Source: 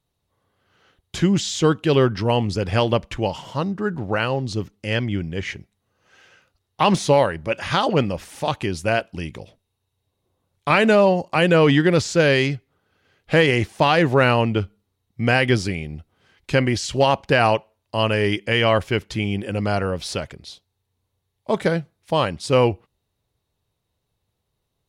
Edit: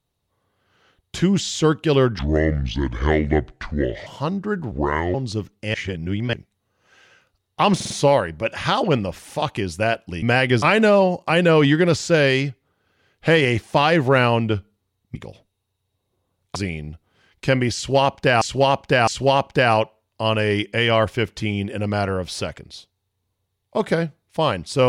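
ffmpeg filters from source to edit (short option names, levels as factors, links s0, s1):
-filter_complex "[0:a]asplit=16[s0][s1][s2][s3][s4][s5][s6][s7][s8][s9][s10][s11][s12][s13][s14][s15];[s0]atrim=end=2.194[s16];[s1]atrim=start=2.19:end=3.41,asetpts=PTS-STARTPTS,asetrate=28665,aresample=44100,atrim=end_sample=82772,asetpts=PTS-STARTPTS[s17];[s2]atrim=start=3.406:end=4.064[s18];[s3]atrim=start=4.06:end=4.35,asetpts=PTS-STARTPTS,asetrate=29988,aresample=44100,atrim=end_sample=18807,asetpts=PTS-STARTPTS[s19];[s4]atrim=start=4.346:end=4.952[s20];[s5]atrim=start=4.948:end=5.542,asetpts=PTS-STARTPTS,areverse[s21];[s6]atrim=start=5.538:end=7.012[s22];[s7]atrim=start=6.958:end=7.012[s23];[s8]atrim=start=6.958:end=7.012[s24];[s9]atrim=start=6.958:end=9.282[s25];[s10]atrim=start=15.208:end=15.612[s26];[s11]atrim=start=10.678:end=15.212[s27];[s12]atrim=start=9.278:end=10.682[s28];[s13]atrim=start=15.608:end=17.472[s29];[s14]atrim=start=16.808:end=17.472[s30];[s15]atrim=start=16.808[s31];[s16][s17]acrossfade=d=0.004:c1=hsin:c2=hsin[s32];[s32][s18]acrossfade=d=0.004:c1=hsin:c2=hsin[s33];[s33][s19]acrossfade=d=0.004:c1=hsin:c2=hsin[s34];[s34][s20]acrossfade=d=0.004:c1=hsin:c2=hsin[s35];[s35][s21]acrossfade=d=0.004:c1=hsin:c2=hsin[s36];[s36][s22]acrossfade=d=0.004:c1=hsin:c2=hsin[s37];[s37][s23]acrossfade=d=0.004:c1=hsin:c2=hsin[s38];[s38][s24]acrossfade=d=0.004:c1=hsin:c2=hsin[s39];[s39][s25]acrossfade=d=0.004:c1=hsin:c2=hsin[s40];[s40][s26]acrossfade=d=0.004:c1=hsin:c2=hsin[s41];[s41][s27]acrossfade=d=0.004:c1=hsin:c2=hsin[s42];[s42][s28]acrossfade=d=0.004:c1=hsin:c2=hsin[s43];[s43][s29]acrossfade=d=0.004:c1=hsin:c2=hsin[s44];[s44][s30]acrossfade=d=0.004:c1=hsin:c2=hsin[s45];[s45][s31]acrossfade=d=0.004:c1=hsin:c2=hsin"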